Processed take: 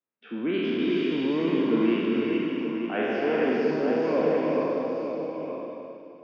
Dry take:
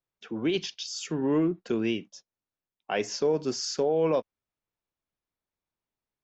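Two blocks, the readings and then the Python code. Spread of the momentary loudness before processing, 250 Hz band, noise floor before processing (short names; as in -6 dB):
8 LU, +6.0 dB, under -85 dBFS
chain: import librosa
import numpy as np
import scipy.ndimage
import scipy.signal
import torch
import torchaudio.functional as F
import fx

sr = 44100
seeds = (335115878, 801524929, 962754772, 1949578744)

y = fx.spec_trails(x, sr, decay_s=2.66)
y = fx.cabinet(y, sr, low_hz=140.0, low_slope=24, high_hz=2700.0, hz=(140.0, 240.0, 810.0), db=(-7, 8, -4))
y = y + 10.0 ** (-8.0 / 20.0) * np.pad(y, (int(924 * sr / 1000.0), 0))[:len(y)]
y = fx.rev_gated(y, sr, seeds[0], gate_ms=480, shape='rising', drr_db=-0.5)
y = y * librosa.db_to_amplitude(-4.0)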